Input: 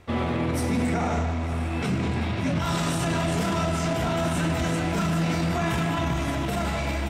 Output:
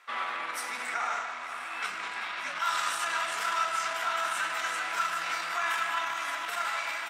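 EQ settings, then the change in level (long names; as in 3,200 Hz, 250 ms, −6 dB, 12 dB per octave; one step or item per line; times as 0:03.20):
high-pass with resonance 1,300 Hz, resonance Q 2.2
−2.5 dB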